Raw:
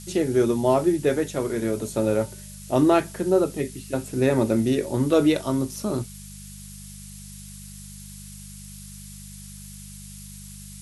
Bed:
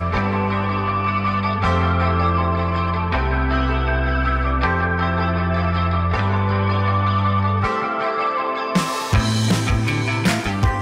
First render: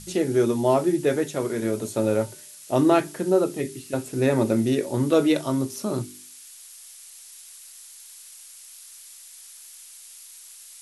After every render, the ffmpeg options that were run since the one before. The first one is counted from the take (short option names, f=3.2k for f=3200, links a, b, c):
-af "bandreject=f=50:t=h:w=4,bandreject=f=100:t=h:w=4,bandreject=f=150:t=h:w=4,bandreject=f=200:t=h:w=4,bandreject=f=250:t=h:w=4,bandreject=f=300:t=h:w=4,bandreject=f=350:t=h:w=4,bandreject=f=400:t=h:w=4"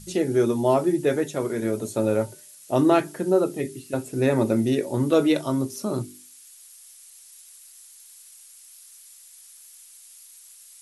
-af "afftdn=nr=6:nf=-46"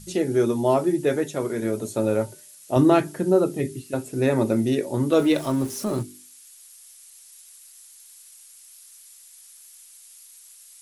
-filter_complex "[0:a]asettb=1/sr,asplit=3[a][b][c];[a]atrim=end=2.764[d];[b]atrim=start=2.76:end=3.82,asetpts=PTS-STARTPTS,afade=t=in:d=0.004:c=qsin,afade=t=out:st=1.056:d=0.004:c=qsin,equalizer=f=75:t=o:w=2.6:g=8.5[e];[c]atrim=start=3.816[f];[d][e]acrossfade=d=0.004:c1=hsin:c2=qsin[g];[g][f]acrossfade=d=0.004:c1=qsin:c2=hsin,asettb=1/sr,asplit=3[h][i][j];[h]atrim=end=5.174[k];[i]atrim=start=5.17:end=6.03,asetpts=PTS-STARTPTS,afade=t=in:d=0.004:c=qsin,afade=t=out:st=0.856:d=0.004:c=qsin,aeval=exprs='val(0)+0.5*0.0168*sgn(val(0))':c=same[l];[j]atrim=start=6.026[m];[k][l]acrossfade=d=0.004:c1=hsin:c2=qsin[n];[n][m]acrossfade=d=0.004:c1=qsin:c2=hsin"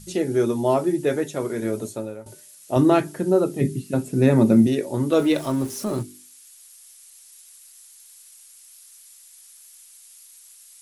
-filter_complex "[0:a]asettb=1/sr,asplit=3[a][b][c];[a]atrim=end=3.614[d];[b]atrim=start=3.61:end=4.67,asetpts=PTS-STARTPTS,afade=t=in:d=0.004:c=qsin,afade=t=out:st=1.056:d=0.004:c=qsin,equalizer=f=180:w=1.5:g=14[e];[c]atrim=start=4.666[f];[d][e]acrossfade=d=0.004:c1=hsin:c2=qsin[g];[g][f]acrossfade=d=0.004:c1=qsin:c2=hsin,asplit=2[h][i];[h]atrim=end=2.26,asetpts=PTS-STARTPTS,afade=t=out:st=1.85:d=0.41:c=qua:silence=0.141254[j];[i]atrim=start=2.26,asetpts=PTS-STARTPTS,afade=t=in:d=0.004:c=hsin:silence=0.141254[k];[j][k]concat=n=2:v=0:a=1"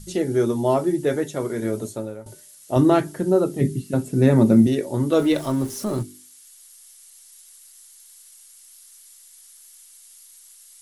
-af "lowshelf=f=67:g=9.5,bandreject=f=2.5k:w=14"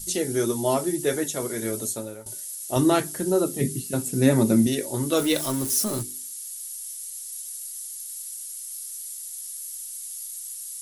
-af "flanger=delay=2.1:depth=2.6:regen=79:speed=1.8:shape=triangular,crystalizer=i=5:c=0"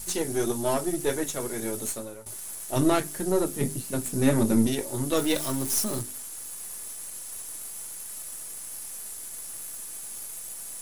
-af "aeval=exprs='if(lt(val(0),0),0.447*val(0),val(0))':c=same"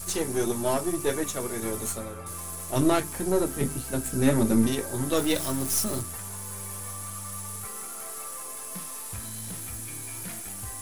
-filter_complex "[1:a]volume=-23.5dB[a];[0:a][a]amix=inputs=2:normalize=0"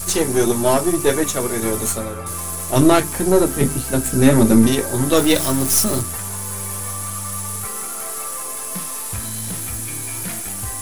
-af "volume=10dB,alimiter=limit=-1dB:level=0:latency=1"